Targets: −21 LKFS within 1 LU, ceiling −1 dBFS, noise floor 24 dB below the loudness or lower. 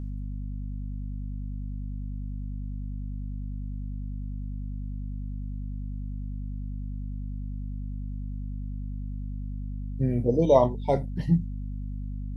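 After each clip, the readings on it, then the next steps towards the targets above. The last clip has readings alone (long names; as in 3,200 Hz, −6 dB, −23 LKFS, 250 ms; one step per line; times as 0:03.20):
mains hum 50 Hz; hum harmonics up to 250 Hz; level of the hum −31 dBFS; integrated loudness −31.5 LKFS; sample peak −6.5 dBFS; target loudness −21.0 LKFS
→ mains-hum notches 50/100/150/200/250 Hz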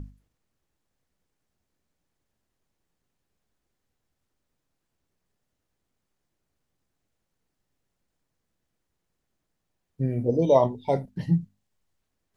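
mains hum none found; integrated loudness −25.0 LKFS; sample peak −7.0 dBFS; target loudness −21.0 LKFS
→ level +4 dB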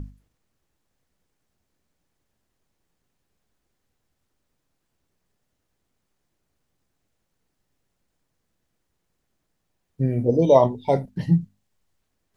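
integrated loudness −21.0 LKFS; sample peak −3.0 dBFS; background noise floor −76 dBFS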